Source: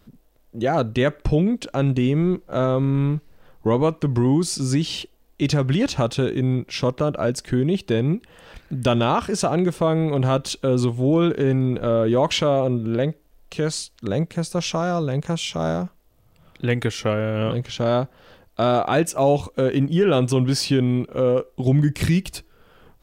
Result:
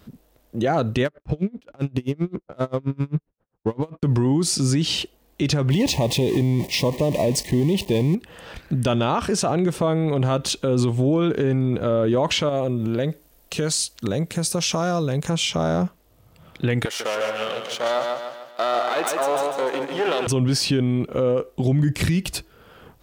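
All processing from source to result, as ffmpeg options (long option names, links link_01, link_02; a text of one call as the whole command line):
ffmpeg -i in.wav -filter_complex "[0:a]asettb=1/sr,asplit=3[link_01][link_02][link_03];[link_01]atrim=end=1.054[link_04];[link_02]atrim=start=1.05:end=4.03,asetpts=PTS-STARTPTS,afade=type=in:duration=0.004:curve=qsin,afade=type=out:start_time=2.976:duration=0.004:curve=qsin,agate=range=-15dB:threshold=-44dB:ratio=16:release=100:detection=peak,adynamicsmooth=sensitivity=7.5:basefreq=1400,aeval=exprs='val(0)*pow(10,-37*(0.5-0.5*cos(2*PI*7.6*n/s))/20)':channel_layout=same[link_05];[link_03]atrim=start=4.026[link_06];[link_04][link_05]acrossfade=duration=0.004:curve1=hsin:curve2=qsin[link_07];[link_07][link_06]acrossfade=duration=0.004:curve1=qsin:curve2=hsin,asettb=1/sr,asplit=3[link_08][link_09][link_10];[link_08]atrim=end=5.704[link_11];[link_09]atrim=start=5.7:end=8.15,asetpts=PTS-STARTPTS,afade=type=in:duration=0.004:curve=qsin,afade=type=out:start_time=2.446:duration=0.004:curve=qsin,aeval=exprs='val(0)+0.5*0.0398*sgn(val(0))':channel_layout=same,asuperstop=centerf=1400:order=8:qfactor=2,agate=range=-33dB:threshold=-26dB:ratio=3:release=100:detection=peak[link_12];[link_10]atrim=start=8.146[link_13];[link_11][link_12]acrossfade=duration=0.004:curve1=hsin:curve2=qsin[link_14];[link_14][link_13]acrossfade=duration=0.004:curve1=qsin:curve2=hsin,asettb=1/sr,asplit=3[link_15][link_16][link_17];[link_15]atrim=end=12.494[link_18];[link_16]atrim=start=12.49:end=15.3,asetpts=PTS-STARTPTS,afade=type=in:duration=0.004:curve=qsin,afade=type=out:start_time=2.806:duration=0.004:curve=qsin,acompressor=threshold=-24dB:ratio=4:attack=3.2:release=140:knee=1:detection=peak,aemphasis=mode=production:type=cd[link_19];[link_17]atrim=start=15.296[link_20];[link_18][link_19]acrossfade=duration=0.004:curve1=hsin:curve2=qsin[link_21];[link_21][link_20]acrossfade=duration=0.004:curve1=qsin:curve2=hsin,asettb=1/sr,asplit=3[link_22][link_23][link_24];[link_22]atrim=end=16.854[link_25];[link_23]atrim=start=16.85:end=20.27,asetpts=PTS-STARTPTS,afade=type=in:duration=0.004:curve=qsin,afade=type=out:start_time=3.416:duration=0.004:curve=qsin,aeval=exprs='if(lt(val(0),0),0.251*val(0),val(0))':channel_layout=same,highpass=530,aecho=1:1:148|296|444|592|740|888:0.501|0.231|0.106|0.0488|0.0224|0.0103,atrim=end_sample=150822[link_26];[link_24]atrim=start=20.266[link_27];[link_25][link_26]acrossfade=duration=0.004:curve1=hsin:curve2=qsin[link_28];[link_28][link_27]acrossfade=duration=0.004:curve1=qsin:curve2=hsin,alimiter=limit=-18dB:level=0:latency=1:release=66,highpass=45,volume=5.5dB" out.wav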